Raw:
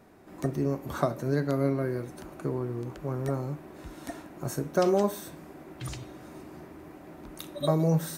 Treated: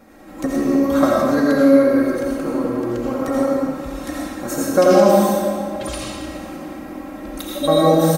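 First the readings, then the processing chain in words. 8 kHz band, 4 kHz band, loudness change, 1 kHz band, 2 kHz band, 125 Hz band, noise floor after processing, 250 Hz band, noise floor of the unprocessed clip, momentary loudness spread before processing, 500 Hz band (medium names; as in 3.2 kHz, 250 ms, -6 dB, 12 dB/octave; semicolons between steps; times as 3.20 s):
+13.0 dB, +14.0 dB, +12.5 dB, +14.5 dB, +14.0 dB, +2.5 dB, -34 dBFS, +14.5 dB, -49 dBFS, 21 LU, +14.0 dB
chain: comb 3.7 ms, depth 88%; on a send: tape echo 303 ms, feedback 56%, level -11.5 dB, low-pass 2.4 kHz; on the sum: algorithmic reverb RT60 1.4 s, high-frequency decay 0.95×, pre-delay 45 ms, DRR -4 dB; trim +6 dB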